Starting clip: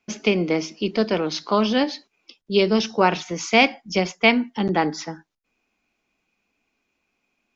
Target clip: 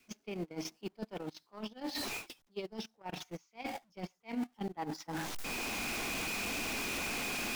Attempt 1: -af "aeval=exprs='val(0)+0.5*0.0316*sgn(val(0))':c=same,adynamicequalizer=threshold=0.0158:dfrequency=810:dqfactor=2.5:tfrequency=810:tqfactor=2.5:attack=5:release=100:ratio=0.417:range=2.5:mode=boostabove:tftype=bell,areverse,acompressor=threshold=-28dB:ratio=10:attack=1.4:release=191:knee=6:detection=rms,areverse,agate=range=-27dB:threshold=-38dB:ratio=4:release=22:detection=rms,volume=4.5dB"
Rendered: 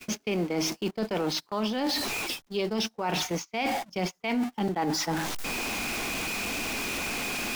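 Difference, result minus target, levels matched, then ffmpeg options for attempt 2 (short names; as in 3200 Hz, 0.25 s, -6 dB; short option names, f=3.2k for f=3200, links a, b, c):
compressor: peak gain reduction -7 dB
-af "aeval=exprs='val(0)+0.5*0.0316*sgn(val(0))':c=same,adynamicequalizer=threshold=0.0158:dfrequency=810:dqfactor=2.5:tfrequency=810:tqfactor=2.5:attack=5:release=100:ratio=0.417:range=2.5:mode=boostabove:tftype=bell,areverse,acompressor=threshold=-36dB:ratio=10:attack=1.4:release=191:knee=6:detection=rms,areverse,agate=range=-27dB:threshold=-38dB:ratio=4:release=22:detection=rms,volume=4.5dB"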